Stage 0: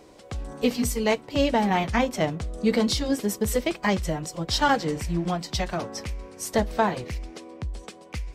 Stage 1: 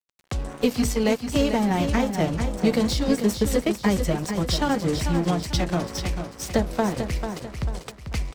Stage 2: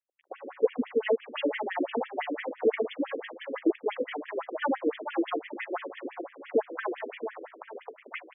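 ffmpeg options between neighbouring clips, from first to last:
-filter_complex "[0:a]acrossover=split=450|6200[a][b][c];[a]acompressor=threshold=-26dB:ratio=4[d];[b]acompressor=threshold=-35dB:ratio=4[e];[c]acompressor=threshold=-44dB:ratio=4[f];[d][e][f]amix=inputs=3:normalize=0,aeval=exprs='sgn(val(0))*max(abs(val(0))-0.00841,0)':c=same,aecho=1:1:443|886|1329|1772:0.398|0.147|0.0545|0.0202,volume=7.5dB"
-af "lowpass=3.6k,afftfilt=real='re*between(b*sr/1024,350*pow(2500/350,0.5+0.5*sin(2*PI*5.9*pts/sr))/1.41,350*pow(2500/350,0.5+0.5*sin(2*PI*5.9*pts/sr))*1.41)':imag='im*between(b*sr/1024,350*pow(2500/350,0.5+0.5*sin(2*PI*5.9*pts/sr))/1.41,350*pow(2500/350,0.5+0.5*sin(2*PI*5.9*pts/sr))*1.41)':win_size=1024:overlap=0.75,volume=2dB"

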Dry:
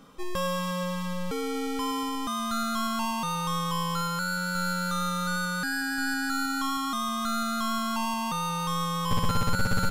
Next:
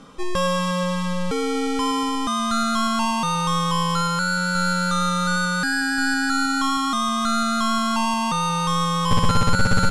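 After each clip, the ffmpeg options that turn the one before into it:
-af "lowpass=f=10k:w=0.5412,lowpass=f=10k:w=1.3066,volume=7.5dB"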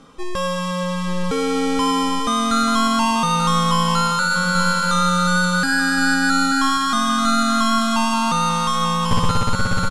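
-filter_complex "[0:a]dynaudnorm=f=180:g=13:m=5dB,flanger=delay=2.4:depth=3.2:regen=-83:speed=0.22:shape=triangular,asplit=2[a][b];[b]aecho=0:1:885|1770|2655:0.251|0.0703|0.0197[c];[a][c]amix=inputs=2:normalize=0,volume=3dB"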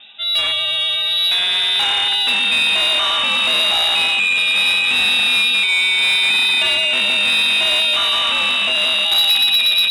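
-filter_complex "[0:a]acrossover=split=350|1200|1900[a][b][c][d];[b]aeval=exprs='(mod(10.6*val(0)+1,2)-1)/10.6':c=same[e];[a][e][c][d]amix=inputs=4:normalize=0,lowpass=f=3.3k:t=q:w=0.5098,lowpass=f=3.3k:t=q:w=0.6013,lowpass=f=3.3k:t=q:w=0.9,lowpass=f=3.3k:t=q:w=2.563,afreqshift=-3900,asoftclip=type=tanh:threshold=-14.5dB,volume=5dB"

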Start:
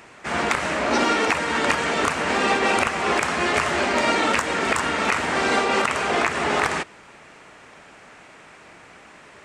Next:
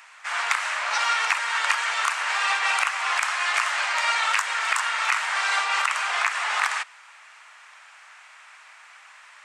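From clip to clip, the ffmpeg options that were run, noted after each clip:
-af "highpass=f=960:w=0.5412,highpass=f=960:w=1.3066"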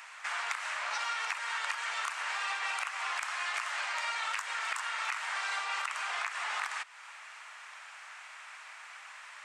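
-af "acompressor=threshold=-36dB:ratio=3"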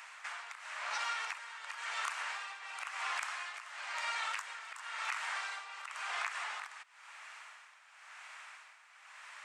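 -af "tremolo=f=0.96:d=0.72,volume=-2dB"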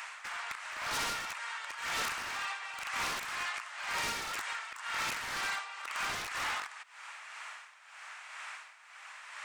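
-af "aeval=exprs='0.015*(abs(mod(val(0)/0.015+3,4)-2)-1)':c=same,tremolo=f=2:d=0.49,volume=8dB"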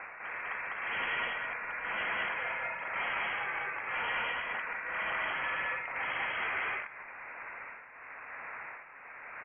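-filter_complex "[0:a]asplit=2[a][b];[b]aecho=0:1:142.9|201.2:0.251|1[c];[a][c]amix=inputs=2:normalize=0,lowpass=f=2.8k:t=q:w=0.5098,lowpass=f=2.8k:t=q:w=0.6013,lowpass=f=2.8k:t=q:w=0.9,lowpass=f=2.8k:t=q:w=2.563,afreqshift=-3300"

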